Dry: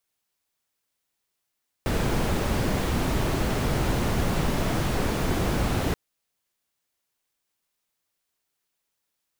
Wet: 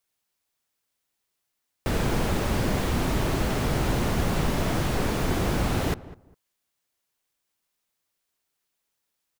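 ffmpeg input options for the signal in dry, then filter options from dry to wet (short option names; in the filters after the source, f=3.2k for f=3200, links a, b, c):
-f lavfi -i "anoisesrc=c=brown:a=0.295:d=4.08:r=44100:seed=1"
-filter_complex "[0:a]asplit=2[a][b];[b]adelay=202,lowpass=f=1.2k:p=1,volume=-16.5dB,asplit=2[c][d];[d]adelay=202,lowpass=f=1.2k:p=1,volume=0.22[e];[a][c][e]amix=inputs=3:normalize=0"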